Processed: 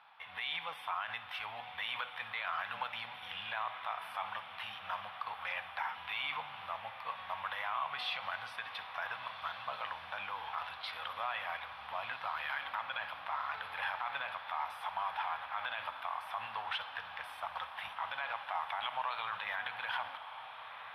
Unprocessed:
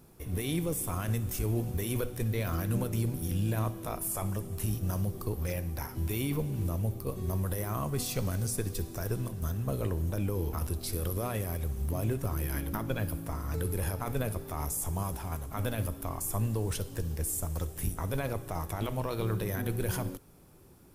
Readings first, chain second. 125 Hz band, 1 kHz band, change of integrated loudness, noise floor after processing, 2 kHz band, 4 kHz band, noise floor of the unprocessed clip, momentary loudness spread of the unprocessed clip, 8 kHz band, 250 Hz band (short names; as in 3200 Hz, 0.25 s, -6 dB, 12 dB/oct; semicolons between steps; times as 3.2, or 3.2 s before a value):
-34.5 dB, +5.0 dB, -6.0 dB, -49 dBFS, +7.0 dB, +4.5 dB, -46 dBFS, 4 LU, under -30 dB, under -30 dB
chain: elliptic band-pass 820–3400 Hz, stop band 40 dB; limiter -36 dBFS, peak gain reduction 10 dB; diffused feedback echo 1.495 s, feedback 72%, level -11.5 dB; gain +9.5 dB